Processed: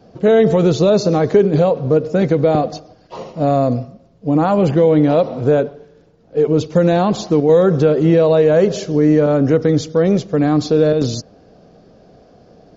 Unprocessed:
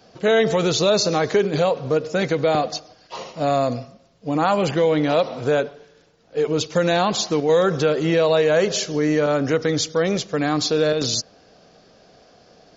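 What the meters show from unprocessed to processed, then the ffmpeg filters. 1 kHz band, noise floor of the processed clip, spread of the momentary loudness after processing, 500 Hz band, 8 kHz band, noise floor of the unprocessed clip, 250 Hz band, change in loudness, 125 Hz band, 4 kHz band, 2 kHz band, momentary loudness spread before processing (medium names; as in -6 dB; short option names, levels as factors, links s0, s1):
+2.0 dB, -49 dBFS, 7 LU, +5.5 dB, no reading, -54 dBFS, +8.5 dB, +5.5 dB, +9.5 dB, -6.0 dB, -3.5 dB, 8 LU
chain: -af "tiltshelf=f=860:g=8.5,volume=1.19"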